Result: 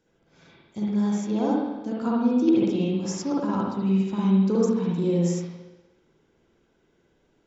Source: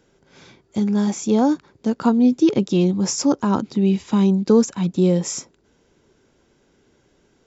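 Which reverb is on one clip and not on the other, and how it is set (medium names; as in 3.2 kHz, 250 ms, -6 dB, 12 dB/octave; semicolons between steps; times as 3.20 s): spring tank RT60 1.1 s, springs 52/58 ms, chirp 25 ms, DRR -5.5 dB; trim -12 dB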